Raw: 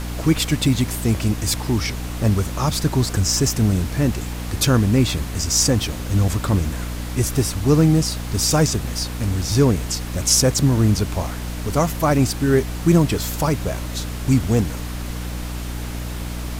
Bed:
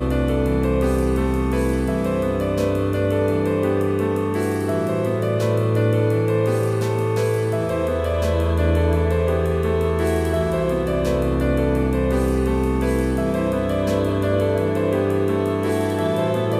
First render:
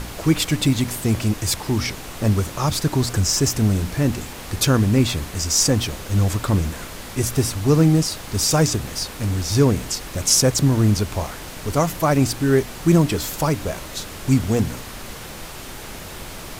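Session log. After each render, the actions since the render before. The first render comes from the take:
hum removal 60 Hz, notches 5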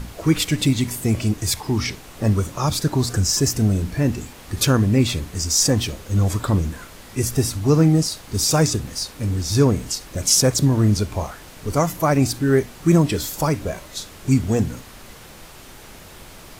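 noise reduction from a noise print 7 dB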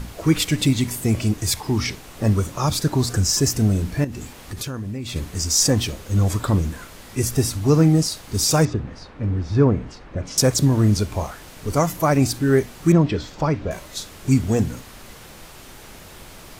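0:04.04–0:05.16: downward compressor 5 to 1, threshold −27 dBFS
0:08.65–0:10.38: low-pass filter 1,900 Hz
0:12.92–0:13.71: high-frequency loss of the air 190 metres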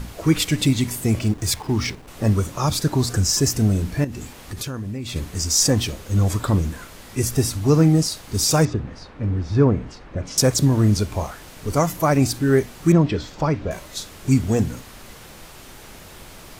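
0:01.19–0:02.08: slack as between gear wheels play −34.5 dBFS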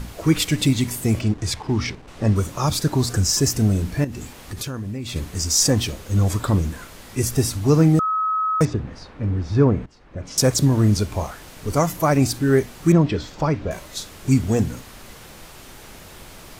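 0:01.21–0:02.36: high-frequency loss of the air 58 metres
0:07.99–0:08.61: beep over 1,280 Hz −18.5 dBFS
0:09.86–0:10.47: fade in, from −18.5 dB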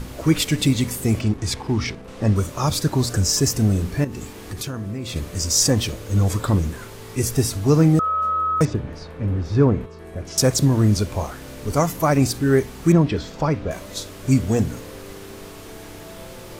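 mix in bed −20 dB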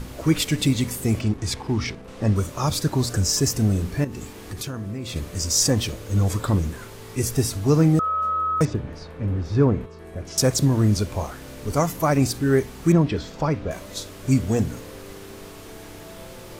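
level −2 dB

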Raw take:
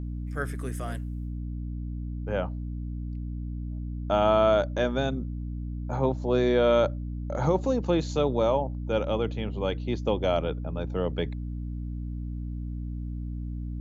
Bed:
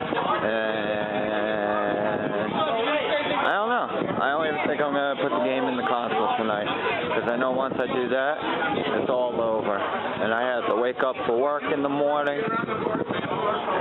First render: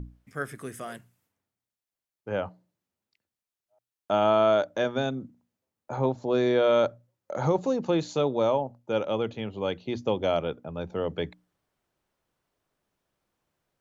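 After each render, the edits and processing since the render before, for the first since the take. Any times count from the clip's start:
mains-hum notches 60/120/180/240/300 Hz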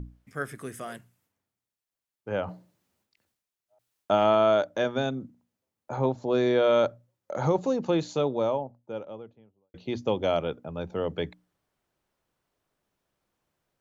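0:02.44–0:04.35: transient designer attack +3 dB, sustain +11 dB
0:07.90–0:09.74: fade out and dull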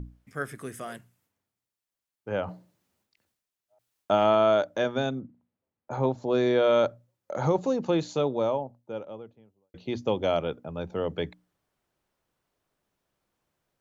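0:05.20–0:05.91: high-frequency loss of the air 400 metres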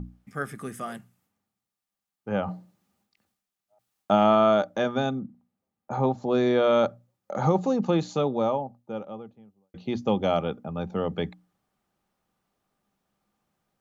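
hollow resonant body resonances 200/790/1,200 Hz, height 10 dB, ringing for 55 ms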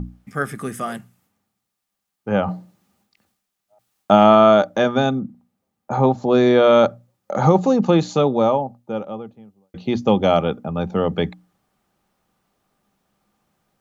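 level +8 dB

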